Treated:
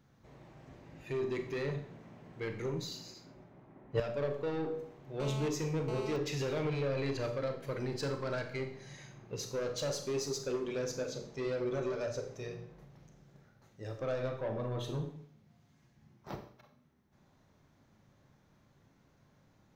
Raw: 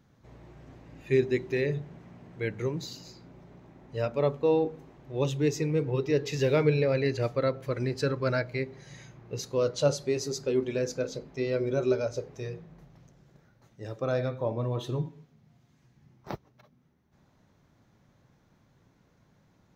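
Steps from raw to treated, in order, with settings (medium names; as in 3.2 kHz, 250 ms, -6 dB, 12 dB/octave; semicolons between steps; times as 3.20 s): hum notches 60/120/180/240/300/360/420/480 Hz; peak limiter -20 dBFS, peak gain reduction 7.5 dB; saturation -28 dBFS, distortion -12 dB; Schroeder reverb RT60 0.54 s, combs from 29 ms, DRR 6 dB; 3.14–4.00 s: three bands expanded up and down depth 100%; 5.20–6.16 s: mobile phone buzz -41 dBFS; trim -2.5 dB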